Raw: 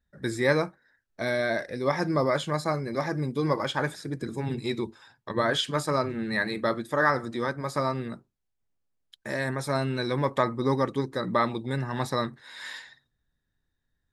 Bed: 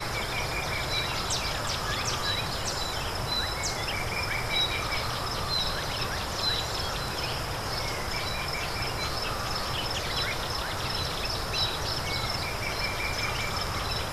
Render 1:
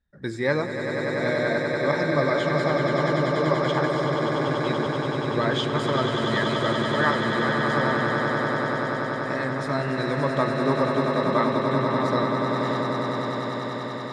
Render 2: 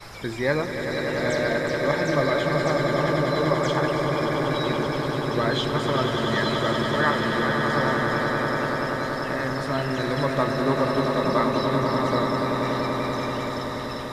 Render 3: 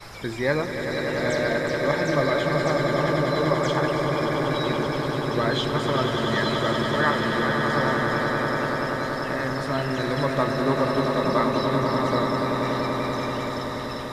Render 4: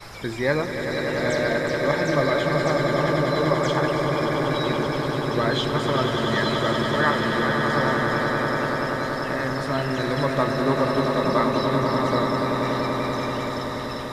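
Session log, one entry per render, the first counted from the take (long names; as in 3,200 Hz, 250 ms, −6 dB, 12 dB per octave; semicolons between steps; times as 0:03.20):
high-frequency loss of the air 85 metres; echo that builds up and dies away 96 ms, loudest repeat 8, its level −7 dB
mix in bed −9.5 dB
no processing that can be heard
level +1 dB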